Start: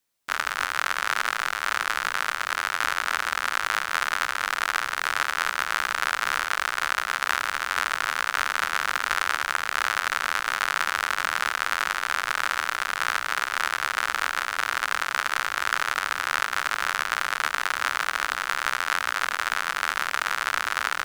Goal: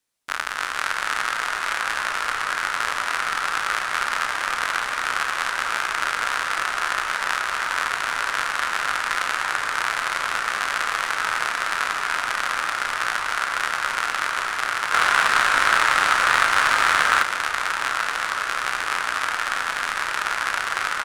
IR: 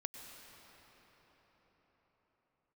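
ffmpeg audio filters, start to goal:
-filter_complex "[0:a]asplit=2[link_01][link_02];[link_02]adelay=34,volume=-14dB[link_03];[link_01][link_03]amix=inputs=2:normalize=0[link_04];[1:a]atrim=start_sample=2205,asetrate=22050,aresample=44100[link_05];[link_04][link_05]afir=irnorm=-1:irlink=0,asettb=1/sr,asplit=3[link_06][link_07][link_08];[link_06]atrim=end=14.934[link_09];[link_07]atrim=start=14.93:end=17.23,asetpts=PTS-STARTPTS,afade=type=in:duration=0.004:curve=qsin,afade=type=out:start_time=2.296:duration=0.004:curve=qsin,acontrast=88[link_10];[link_08]atrim=start=17.226[link_11];[link_09][link_10]acrossfade=duration=0.004:curve1=hsin:curve2=qsin[link_12];[link_12][link_11]acrossfade=duration=0.004:curve1=qsin:curve2=hsin"

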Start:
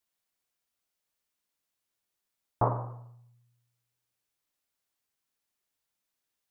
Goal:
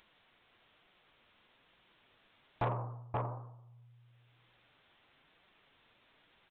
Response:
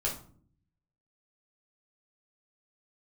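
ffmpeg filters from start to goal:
-af "aecho=1:1:529:0.631,flanger=delay=5.1:depth=4.3:regen=-44:speed=1.1:shape=triangular,aresample=8000,asoftclip=type=tanh:threshold=-28dB,aresample=44100,acompressor=mode=upward:threshold=-49dB:ratio=2.5,volume=1dB"

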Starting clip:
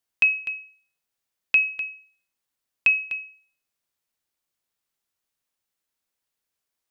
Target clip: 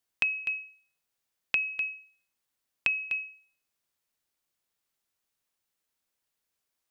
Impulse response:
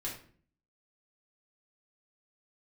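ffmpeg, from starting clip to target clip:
-af "acompressor=threshold=-25dB:ratio=6"

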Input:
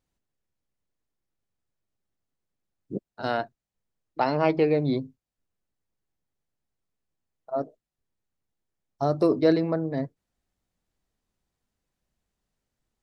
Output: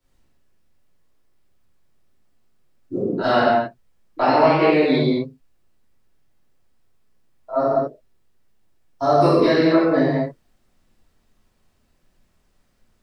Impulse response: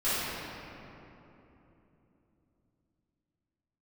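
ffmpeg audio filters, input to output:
-filter_complex "[0:a]acrossover=split=110|230|930[link_01][link_02][link_03][link_04];[link_01]acompressor=threshold=-60dB:ratio=4[link_05];[link_02]acompressor=threshold=-45dB:ratio=4[link_06];[link_03]acompressor=threshold=-32dB:ratio=4[link_07];[link_04]acompressor=threshold=-35dB:ratio=4[link_08];[link_05][link_06][link_07][link_08]amix=inputs=4:normalize=0[link_09];[1:a]atrim=start_sample=2205,afade=type=out:start_time=0.31:duration=0.01,atrim=end_sample=14112[link_10];[link_09][link_10]afir=irnorm=-1:irlink=0,volume=5.5dB"

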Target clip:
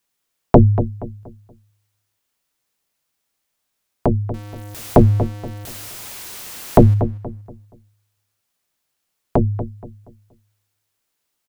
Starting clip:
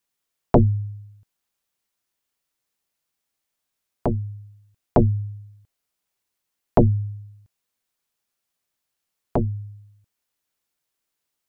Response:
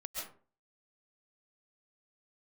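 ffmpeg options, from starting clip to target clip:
-filter_complex "[0:a]asettb=1/sr,asplit=3[link_01][link_02][link_03];[link_01]atrim=end=4.344[link_04];[link_02]atrim=start=4.34:end=6.94,asetpts=PTS-STARTPTS,afade=type=in:duration=0.004:curve=qsin,afade=type=out:start_time=2.596:duration=0.004:curve=qsin,aeval=exprs='val(0)+0.5*0.0211*sgn(val(0))':channel_layout=same[link_05];[link_03]atrim=start=6.936[link_06];[link_04][link_05]acrossfade=duration=0.004:curve1=hsin:curve2=qsin[link_07];[link_07][link_06]acrossfade=duration=0.004:curve1=qsin:curve2=hsin,asplit=2[link_08][link_09];[link_09]adelay=237,lowpass=frequency=1700:poles=1,volume=-11.5dB,asplit=2[link_10][link_11];[link_11]adelay=237,lowpass=frequency=1700:poles=1,volume=0.34,asplit=2[link_12][link_13];[link_13]adelay=237,lowpass=frequency=1700:poles=1,volume=0.34,asplit=2[link_14][link_15];[link_15]adelay=237,lowpass=frequency=1700:poles=1,volume=0.34[link_16];[link_10][link_12][link_14][link_16]amix=inputs=4:normalize=0[link_17];[link_08][link_17]amix=inputs=2:normalize=0,volume=5.5dB"

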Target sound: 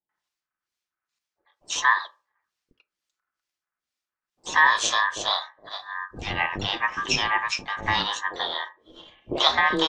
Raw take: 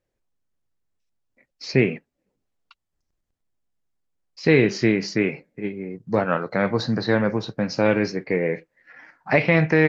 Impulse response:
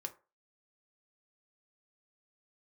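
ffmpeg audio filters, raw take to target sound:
-filter_complex "[0:a]highpass=frequency=46:width=0.5412,highpass=frequency=46:width=1.3066,equalizer=frequency=3600:width_type=o:width=1.7:gain=11.5,acrossover=split=190|2300[link_01][link_02][link_03];[link_01]acompressor=threshold=-36dB:ratio=6[link_04];[link_04][link_02][link_03]amix=inputs=3:normalize=0,acrossover=split=1200[link_05][link_06];[link_05]aeval=exprs='val(0)*(1-1/2+1/2*cos(2*PI*2.2*n/s))':channel_layout=same[link_07];[link_06]aeval=exprs='val(0)*(1-1/2-1/2*cos(2*PI*2.2*n/s))':channel_layout=same[link_08];[link_07][link_08]amix=inputs=2:normalize=0,asplit=2[link_09][link_10];[link_10]asetrate=58866,aresample=44100,atempo=0.749154,volume=-15dB[link_11];[link_09][link_11]amix=inputs=2:normalize=0,aeval=exprs='val(0)*sin(2*PI*1400*n/s)':channel_layout=same,acrossover=split=550[link_12][link_13];[link_13]adelay=90[link_14];[link_12][link_14]amix=inputs=2:normalize=0,asplit=2[link_15][link_16];[1:a]atrim=start_sample=2205[link_17];[link_16][link_17]afir=irnorm=-1:irlink=0,volume=1.5dB[link_18];[link_15][link_18]amix=inputs=2:normalize=0,volume=-2dB"

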